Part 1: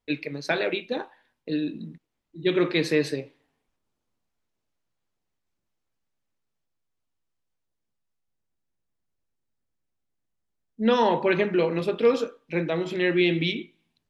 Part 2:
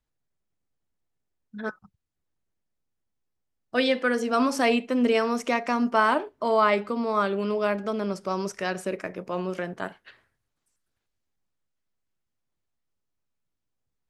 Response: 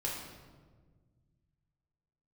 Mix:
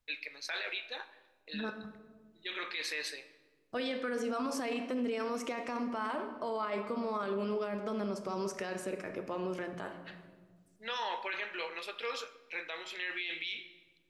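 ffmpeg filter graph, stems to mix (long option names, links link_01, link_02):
-filter_complex "[0:a]highpass=1300,volume=-3.5dB,asplit=2[link_01][link_02];[link_02]volume=-14.5dB[link_03];[1:a]acompressor=threshold=-35dB:ratio=2,volume=-3dB,asplit=2[link_04][link_05];[link_05]volume=-8dB[link_06];[2:a]atrim=start_sample=2205[link_07];[link_03][link_06]amix=inputs=2:normalize=0[link_08];[link_08][link_07]afir=irnorm=-1:irlink=0[link_09];[link_01][link_04][link_09]amix=inputs=3:normalize=0,alimiter=level_in=3dB:limit=-24dB:level=0:latency=1:release=13,volume=-3dB"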